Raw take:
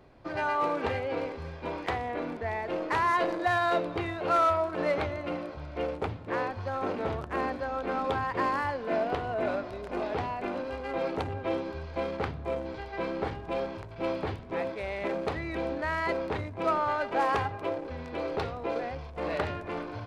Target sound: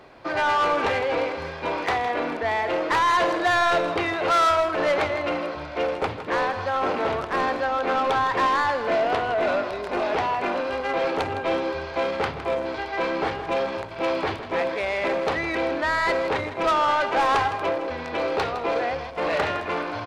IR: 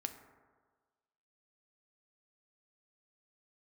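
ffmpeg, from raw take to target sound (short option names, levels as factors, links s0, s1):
-filter_complex "[0:a]asplit=2[s0][s1];[s1]highpass=f=720:p=1,volume=6.31,asoftclip=type=tanh:threshold=0.141[s2];[s0][s2]amix=inputs=2:normalize=0,lowpass=f=6900:p=1,volume=0.501,aecho=1:1:160:0.266,volume=1.33"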